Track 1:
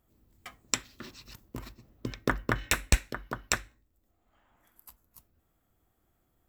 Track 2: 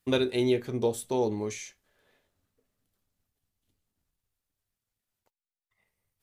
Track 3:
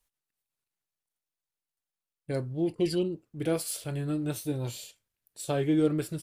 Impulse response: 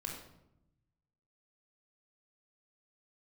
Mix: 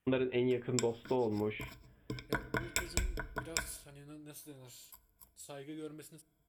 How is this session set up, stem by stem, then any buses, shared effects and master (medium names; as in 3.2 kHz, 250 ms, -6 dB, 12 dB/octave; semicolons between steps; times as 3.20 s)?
-8.5 dB, 0.05 s, send -14 dB, rippled EQ curve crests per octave 1.7, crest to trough 16 dB
1.51 s 0 dB -> 2.27 s -7 dB, 0.00 s, no send, steep low-pass 3.3 kHz 72 dB/octave
-17.5 dB, 0.00 s, send -19.5 dB, tilt EQ +2 dB/octave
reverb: on, RT60 0.85 s, pre-delay 20 ms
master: compression 4:1, threshold -30 dBFS, peak gain reduction 8.5 dB